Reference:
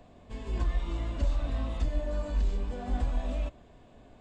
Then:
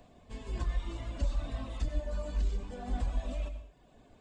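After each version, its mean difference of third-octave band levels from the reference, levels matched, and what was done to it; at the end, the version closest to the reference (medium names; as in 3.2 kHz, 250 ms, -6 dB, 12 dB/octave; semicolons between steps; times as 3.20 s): 2.5 dB: reverb removal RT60 0.92 s; treble shelf 4.2 kHz +6.5 dB; plate-style reverb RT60 0.69 s, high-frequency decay 0.85×, pre-delay 85 ms, DRR 9 dB; trim -3 dB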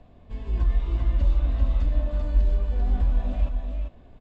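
4.0 dB: low-pass 4.6 kHz 12 dB/octave; bass shelf 120 Hz +10.5 dB; delay 392 ms -4.5 dB; trim -2 dB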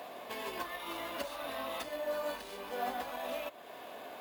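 11.0 dB: compression 2:1, threshold -45 dBFS, peak gain reduction 12.5 dB; high-pass 620 Hz 12 dB/octave; careless resampling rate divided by 3×, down filtered, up hold; trim +15.5 dB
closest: first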